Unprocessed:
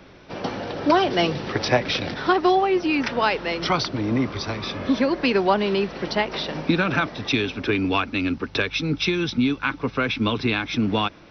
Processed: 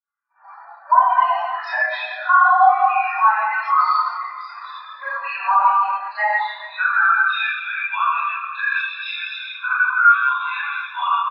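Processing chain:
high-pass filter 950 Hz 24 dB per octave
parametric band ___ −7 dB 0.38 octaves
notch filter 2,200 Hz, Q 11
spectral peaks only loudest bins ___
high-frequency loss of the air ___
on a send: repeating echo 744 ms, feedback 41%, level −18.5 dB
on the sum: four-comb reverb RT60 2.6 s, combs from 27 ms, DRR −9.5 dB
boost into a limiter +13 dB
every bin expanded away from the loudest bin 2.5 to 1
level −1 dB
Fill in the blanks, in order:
3,000 Hz, 64, 130 metres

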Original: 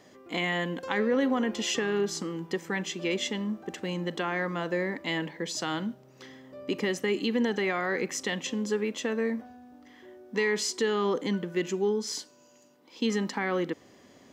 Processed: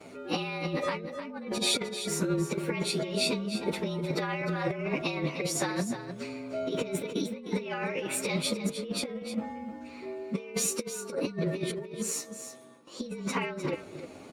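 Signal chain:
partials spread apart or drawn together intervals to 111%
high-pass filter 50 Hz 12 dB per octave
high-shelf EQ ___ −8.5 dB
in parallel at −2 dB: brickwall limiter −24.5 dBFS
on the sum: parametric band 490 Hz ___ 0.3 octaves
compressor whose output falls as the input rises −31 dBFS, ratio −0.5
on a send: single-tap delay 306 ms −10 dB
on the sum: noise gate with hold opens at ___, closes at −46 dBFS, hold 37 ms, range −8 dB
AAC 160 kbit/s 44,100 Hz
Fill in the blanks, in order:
7,400 Hz, +4 dB, −45 dBFS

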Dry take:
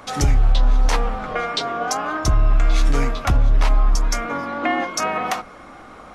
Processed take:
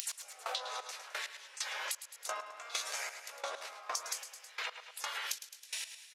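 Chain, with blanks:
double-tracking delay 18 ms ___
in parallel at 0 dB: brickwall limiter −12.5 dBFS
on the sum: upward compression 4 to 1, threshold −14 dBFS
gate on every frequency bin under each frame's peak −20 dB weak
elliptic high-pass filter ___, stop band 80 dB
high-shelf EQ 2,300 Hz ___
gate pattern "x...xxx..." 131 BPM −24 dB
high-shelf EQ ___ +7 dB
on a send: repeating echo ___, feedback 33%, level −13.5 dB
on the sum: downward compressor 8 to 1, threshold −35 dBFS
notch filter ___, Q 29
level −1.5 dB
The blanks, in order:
−9 dB, 490 Hz, +8.5 dB, 5,000 Hz, 106 ms, 3,200 Hz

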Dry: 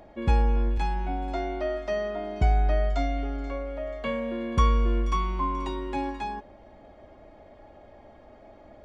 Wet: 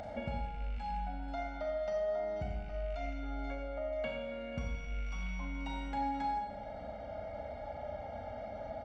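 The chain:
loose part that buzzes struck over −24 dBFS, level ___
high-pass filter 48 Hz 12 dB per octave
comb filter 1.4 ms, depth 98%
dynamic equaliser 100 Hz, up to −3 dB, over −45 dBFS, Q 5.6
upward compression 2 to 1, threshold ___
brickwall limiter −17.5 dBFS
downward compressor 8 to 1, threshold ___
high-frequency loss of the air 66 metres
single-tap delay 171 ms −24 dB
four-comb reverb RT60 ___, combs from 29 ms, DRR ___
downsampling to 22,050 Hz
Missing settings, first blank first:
−29 dBFS, −41 dBFS, −37 dBFS, 1.1 s, 0 dB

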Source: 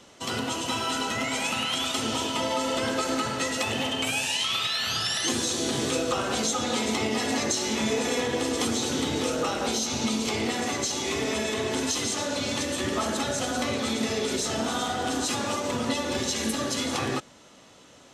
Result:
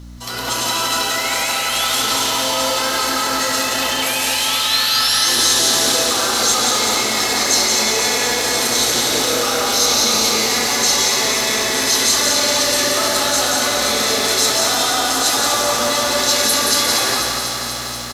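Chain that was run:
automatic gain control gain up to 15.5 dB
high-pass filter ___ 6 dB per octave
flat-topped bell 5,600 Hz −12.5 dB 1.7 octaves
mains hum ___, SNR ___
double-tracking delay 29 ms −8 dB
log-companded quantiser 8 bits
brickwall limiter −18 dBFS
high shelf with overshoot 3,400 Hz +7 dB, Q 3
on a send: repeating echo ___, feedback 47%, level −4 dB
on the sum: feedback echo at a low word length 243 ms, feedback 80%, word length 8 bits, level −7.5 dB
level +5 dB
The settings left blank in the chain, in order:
1,500 Hz, 60 Hz, 17 dB, 175 ms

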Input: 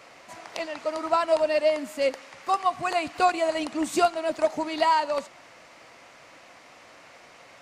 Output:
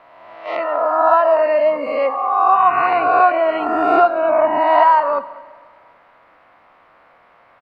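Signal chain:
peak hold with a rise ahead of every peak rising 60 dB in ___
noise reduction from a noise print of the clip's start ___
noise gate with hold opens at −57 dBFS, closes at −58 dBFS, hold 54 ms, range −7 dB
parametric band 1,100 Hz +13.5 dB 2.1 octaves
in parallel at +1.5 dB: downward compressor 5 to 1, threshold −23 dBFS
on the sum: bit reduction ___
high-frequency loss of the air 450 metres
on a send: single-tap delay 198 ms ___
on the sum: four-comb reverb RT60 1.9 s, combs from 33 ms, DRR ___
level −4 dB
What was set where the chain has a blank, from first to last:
1.70 s, 14 dB, 8 bits, −23 dB, 16.5 dB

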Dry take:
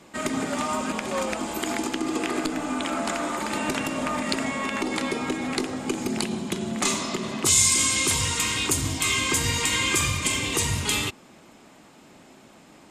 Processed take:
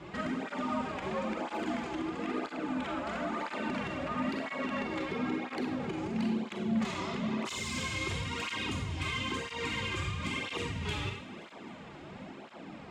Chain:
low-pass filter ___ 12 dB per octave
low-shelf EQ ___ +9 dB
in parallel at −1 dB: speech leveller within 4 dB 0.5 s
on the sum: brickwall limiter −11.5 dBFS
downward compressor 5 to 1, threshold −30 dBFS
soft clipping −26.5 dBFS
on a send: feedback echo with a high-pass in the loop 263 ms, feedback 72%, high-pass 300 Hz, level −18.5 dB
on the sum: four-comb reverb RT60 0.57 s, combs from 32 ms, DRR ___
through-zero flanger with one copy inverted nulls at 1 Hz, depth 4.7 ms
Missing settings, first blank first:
3,000 Hz, 100 Hz, 2.5 dB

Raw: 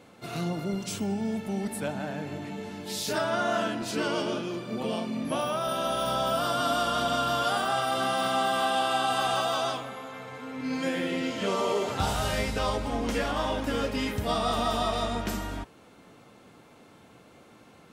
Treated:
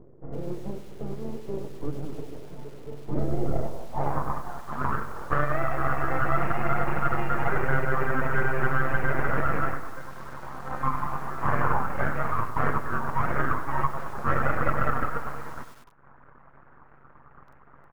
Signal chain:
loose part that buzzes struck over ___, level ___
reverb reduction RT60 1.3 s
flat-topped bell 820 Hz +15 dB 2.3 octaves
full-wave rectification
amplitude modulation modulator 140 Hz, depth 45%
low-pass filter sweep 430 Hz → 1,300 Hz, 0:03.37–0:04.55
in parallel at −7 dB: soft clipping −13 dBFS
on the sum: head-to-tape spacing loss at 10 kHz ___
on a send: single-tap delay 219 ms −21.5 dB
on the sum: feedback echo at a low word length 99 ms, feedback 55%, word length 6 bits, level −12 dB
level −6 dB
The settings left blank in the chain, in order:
−33 dBFS, −25 dBFS, 23 dB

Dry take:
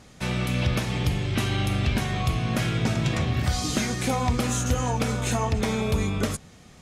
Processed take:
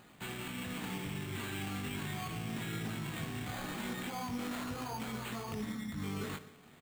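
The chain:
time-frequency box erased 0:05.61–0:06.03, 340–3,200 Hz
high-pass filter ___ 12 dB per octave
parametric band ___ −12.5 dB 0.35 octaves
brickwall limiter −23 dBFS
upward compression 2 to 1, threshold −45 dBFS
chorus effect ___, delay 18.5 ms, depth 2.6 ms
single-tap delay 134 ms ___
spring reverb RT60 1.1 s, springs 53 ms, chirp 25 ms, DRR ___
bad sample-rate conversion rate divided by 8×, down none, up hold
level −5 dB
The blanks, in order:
150 Hz, 570 Hz, 0.38 Hz, −23 dB, 11 dB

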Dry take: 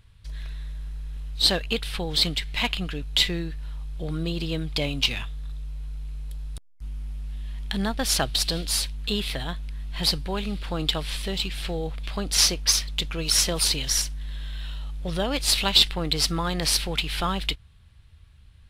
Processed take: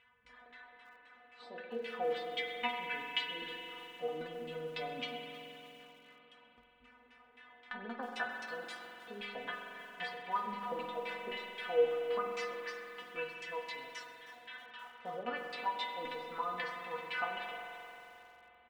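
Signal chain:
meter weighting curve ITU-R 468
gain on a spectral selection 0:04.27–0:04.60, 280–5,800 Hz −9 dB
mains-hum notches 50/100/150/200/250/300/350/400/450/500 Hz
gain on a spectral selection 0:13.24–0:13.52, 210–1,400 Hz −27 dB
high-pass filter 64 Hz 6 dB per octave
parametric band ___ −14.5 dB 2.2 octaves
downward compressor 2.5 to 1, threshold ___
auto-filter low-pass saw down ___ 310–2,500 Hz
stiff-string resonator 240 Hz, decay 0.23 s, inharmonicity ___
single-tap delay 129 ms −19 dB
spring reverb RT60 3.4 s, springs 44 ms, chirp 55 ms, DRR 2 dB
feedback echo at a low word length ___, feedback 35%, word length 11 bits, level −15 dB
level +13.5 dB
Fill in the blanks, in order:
4,500 Hz, −39 dBFS, 3.8 Hz, 0.002, 315 ms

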